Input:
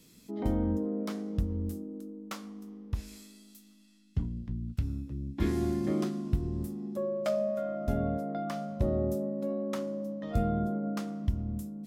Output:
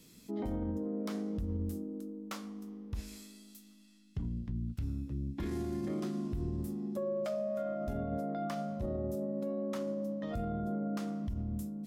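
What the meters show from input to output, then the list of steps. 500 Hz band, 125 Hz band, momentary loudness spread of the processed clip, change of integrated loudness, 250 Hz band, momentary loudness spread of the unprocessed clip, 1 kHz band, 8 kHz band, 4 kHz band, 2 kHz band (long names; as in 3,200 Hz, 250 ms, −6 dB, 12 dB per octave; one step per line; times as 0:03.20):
−4.0 dB, −5.0 dB, 8 LU, −4.0 dB, −3.5 dB, 12 LU, −3.5 dB, −3.0 dB, −3.5 dB, −4.0 dB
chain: brickwall limiter −28.5 dBFS, peak gain reduction 12 dB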